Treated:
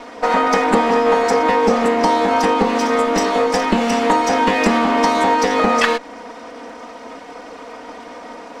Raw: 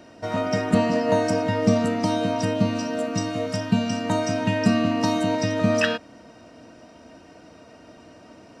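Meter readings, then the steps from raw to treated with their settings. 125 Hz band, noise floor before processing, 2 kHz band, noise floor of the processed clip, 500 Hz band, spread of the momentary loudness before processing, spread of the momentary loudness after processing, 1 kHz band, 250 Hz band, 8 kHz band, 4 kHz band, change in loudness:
-6.5 dB, -49 dBFS, +9.5 dB, -36 dBFS, +7.5 dB, 6 LU, 20 LU, +14.0 dB, +3.0 dB, +6.5 dB, +6.5 dB, +7.5 dB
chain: comb filter that takes the minimum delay 4.1 ms; graphic EQ 125/250/500/1000/2000/4000/8000 Hz -8/+5/+11/+11/+9/+5/+6 dB; compression 4:1, threshold -16 dBFS, peak gain reduction 9.5 dB; trim +3.5 dB

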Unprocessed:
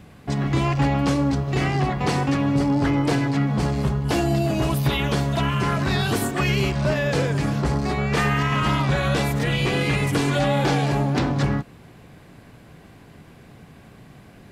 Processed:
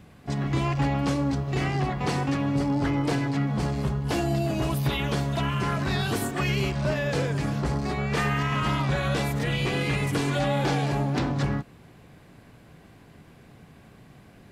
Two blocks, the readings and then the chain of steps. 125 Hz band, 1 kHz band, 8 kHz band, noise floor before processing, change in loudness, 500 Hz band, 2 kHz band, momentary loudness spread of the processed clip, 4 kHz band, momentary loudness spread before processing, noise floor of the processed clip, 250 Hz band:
-4.0 dB, -4.5 dB, -4.5 dB, -48 dBFS, -4.5 dB, -4.5 dB, -4.5 dB, 2 LU, -4.5 dB, 3 LU, -52 dBFS, -4.5 dB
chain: pre-echo 37 ms -21 dB; trim -4.5 dB

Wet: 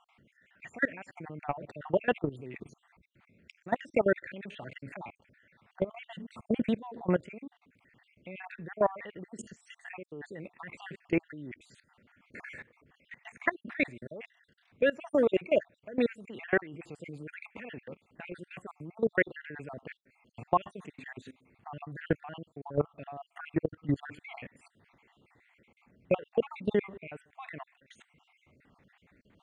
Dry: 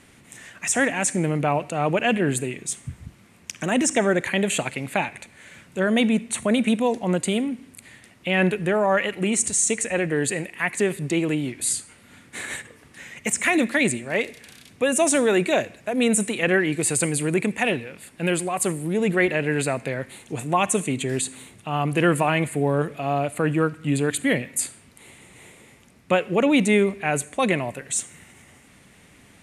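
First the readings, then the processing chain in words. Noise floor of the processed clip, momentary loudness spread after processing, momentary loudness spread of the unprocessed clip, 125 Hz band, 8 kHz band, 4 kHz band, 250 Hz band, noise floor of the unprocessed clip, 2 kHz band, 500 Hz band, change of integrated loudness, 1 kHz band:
-75 dBFS, 18 LU, 11 LU, -14.0 dB, under -35 dB, -20.0 dB, -13.0 dB, -53 dBFS, -12.0 dB, -9.0 dB, -10.5 dB, -11.5 dB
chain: random holes in the spectrogram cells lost 55%; level held to a coarse grid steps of 21 dB; low-pass 2.1 kHz 12 dB/octave; dynamic bell 220 Hz, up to -5 dB, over -39 dBFS, Q 1.1

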